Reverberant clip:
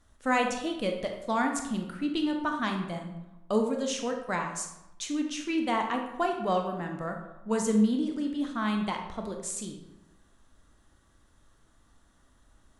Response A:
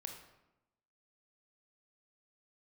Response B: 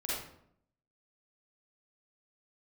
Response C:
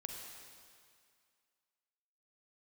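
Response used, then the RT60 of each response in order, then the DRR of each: A; 0.95, 0.70, 2.1 seconds; 3.0, −7.5, 1.5 decibels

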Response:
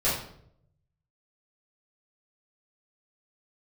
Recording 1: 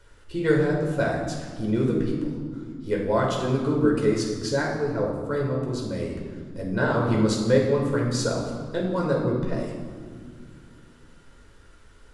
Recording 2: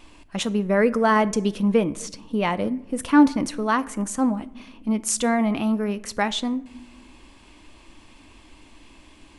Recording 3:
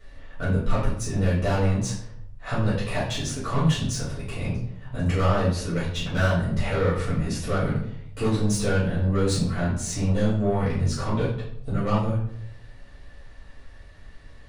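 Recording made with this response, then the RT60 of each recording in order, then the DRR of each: 3; 2.0 s, non-exponential decay, 0.70 s; −2.0, 14.5, −11.0 decibels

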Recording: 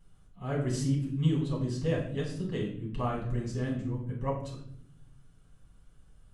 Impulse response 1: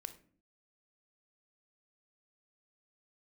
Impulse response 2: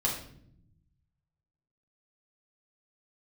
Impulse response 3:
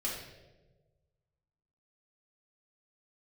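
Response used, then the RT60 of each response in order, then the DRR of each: 2; 0.45 s, non-exponential decay, 1.3 s; 9.5, −4.5, −6.0 decibels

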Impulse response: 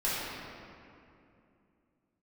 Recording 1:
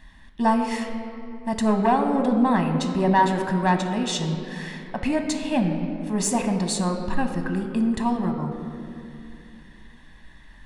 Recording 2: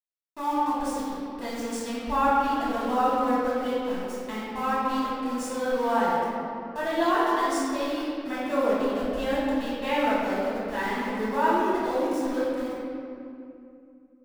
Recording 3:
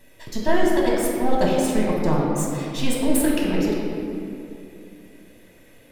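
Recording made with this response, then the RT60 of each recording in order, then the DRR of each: 2; 2.7, 2.6, 2.6 seconds; 5.0, −10.5, −4.0 decibels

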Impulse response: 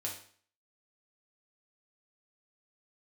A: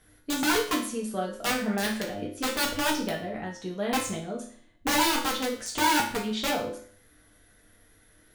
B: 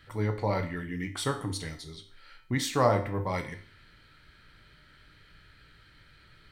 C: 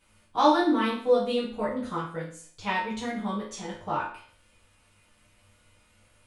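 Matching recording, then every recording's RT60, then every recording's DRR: A; 0.50, 0.50, 0.50 seconds; −2.5, 4.5, −9.0 decibels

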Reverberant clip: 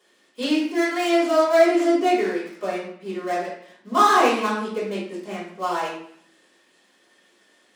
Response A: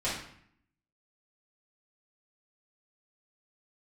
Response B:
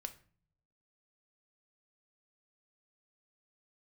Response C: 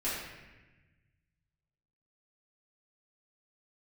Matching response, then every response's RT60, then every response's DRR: A; 0.65, 0.45, 1.1 seconds; −10.0, 7.5, −11.0 decibels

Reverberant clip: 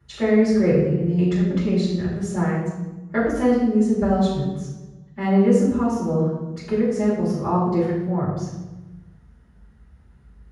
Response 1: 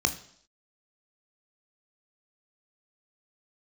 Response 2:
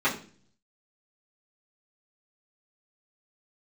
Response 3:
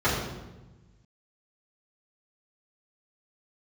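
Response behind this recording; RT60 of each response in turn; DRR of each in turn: 3; 0.65, 0.45, 1.1 seconds; 7.0, −10.5, −11.5 decibels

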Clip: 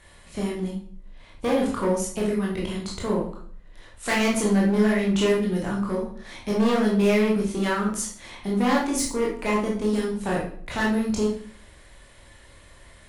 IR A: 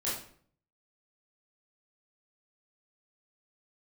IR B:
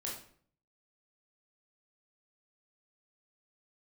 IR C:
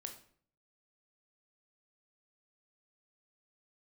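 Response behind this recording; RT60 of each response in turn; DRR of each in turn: B; 0.55, 0.55, 0.55 seconds; −8.5, −3.5, 4.5 decibels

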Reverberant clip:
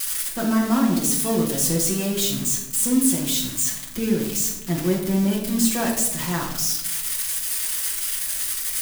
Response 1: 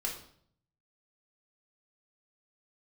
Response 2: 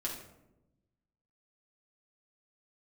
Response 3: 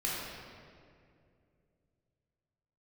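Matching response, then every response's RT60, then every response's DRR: 2; 0.60, 0.95, 2.4 seconds; −2.0, −4.0, −7.5 decibels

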